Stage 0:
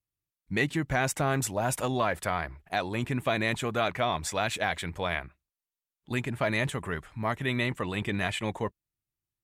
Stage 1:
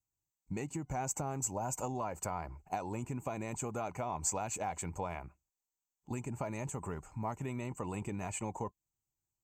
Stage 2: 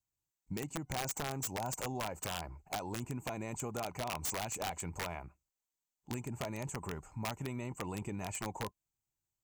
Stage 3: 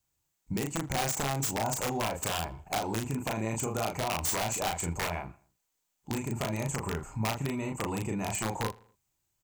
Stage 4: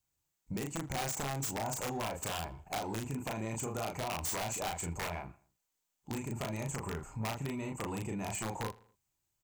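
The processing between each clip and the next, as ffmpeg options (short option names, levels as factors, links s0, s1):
-af "equalizer=f=2600:t=o:w=2.5:g=-8,acompressor=threshold=0.02:ratio=6,superequalizer=9b=2.24:11b=0.447:13b=0.251:15b=3.55:16b=0.282,volume=0.841"
-af "aeval=exprs='(mod(28.2*val(0)+1,2)-1)/28.2':c=same,volume=0.891"
-filter_complex "[0:a]asplit=2[s0][s1];[s1]acompressor=threshold=0.00501:ratio=6,volume=0.891[s2];[s0][s2]amix=inputs=2:normalize=0,asplit=2[s3][s4];[s4]adelay=36,volume=0.708[s5];[s3][s5]amix=inputs=2:normalize=0,asplit=2[s6][s7];[s7]adelay=80,lowpass=f=4100:p=1,volume=0.0794,asplit=2[s8][s9];[s9]adelay=80,lowpass=f=4100:p=1,volume=0.47,asplit=2[s10][s11];[s11]adelay=80,lowpass=f=4100:p=1,volume=0.47[s12];[s6][s8][s10][s12]amix=inputs=4:normalize=0,volume=1.5"
-af "asoftclip=type=tanh:threshold=0.0596,volume=0.631"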